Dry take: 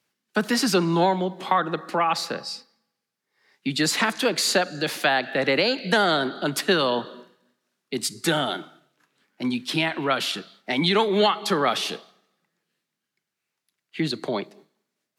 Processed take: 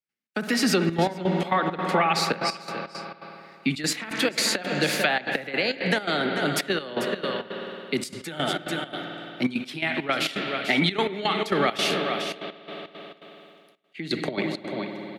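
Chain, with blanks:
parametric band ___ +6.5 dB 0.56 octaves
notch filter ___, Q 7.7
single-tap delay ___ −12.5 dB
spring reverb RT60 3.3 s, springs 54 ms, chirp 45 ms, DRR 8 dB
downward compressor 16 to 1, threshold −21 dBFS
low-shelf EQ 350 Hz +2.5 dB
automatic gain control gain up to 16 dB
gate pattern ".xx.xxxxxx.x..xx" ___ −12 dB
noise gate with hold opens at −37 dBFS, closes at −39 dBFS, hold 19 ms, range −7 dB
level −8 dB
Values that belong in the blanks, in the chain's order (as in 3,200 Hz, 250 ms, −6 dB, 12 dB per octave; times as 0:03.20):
2,200 Hz, 1,000 Hz, 442 ms, 168 BPM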